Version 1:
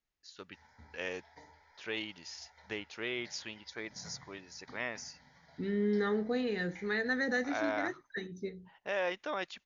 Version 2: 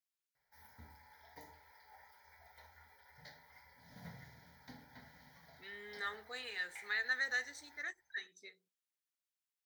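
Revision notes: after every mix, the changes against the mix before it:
first voice: muted; second voice: add high-pass 1.4 kHz 12 dB/octave; master: remove brick-wall FIR low-pass 7.1 kHz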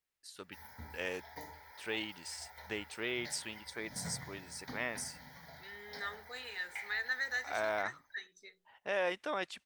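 first voice: unmuted; background +8.0 dB

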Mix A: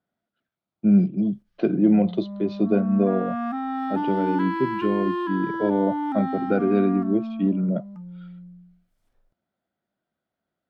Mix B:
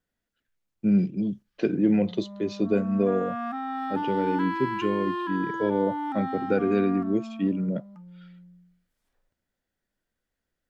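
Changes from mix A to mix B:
speech: remove cabinet simulation 180–4100 Hz, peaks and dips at 270 Hz -4 dB, 470 Hz -6 dB, 680 Hz +8 dB, 1.3 kHz +5 dB, 1.8 kHz -7 dB, 2.7 kHz -4 dB; master: add bass shelf 420 Hz -9 dB

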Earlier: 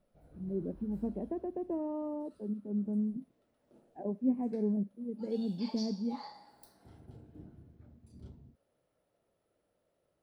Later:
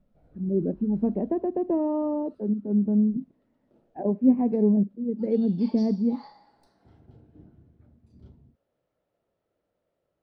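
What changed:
speech +11.0 dB; master: add distance through air 110 m

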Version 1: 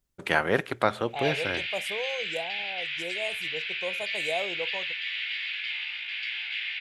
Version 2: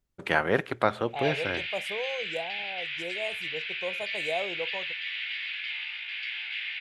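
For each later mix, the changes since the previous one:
master: add treble shelf 4.6 kHz -7.5 dB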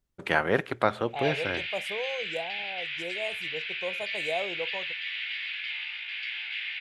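no change

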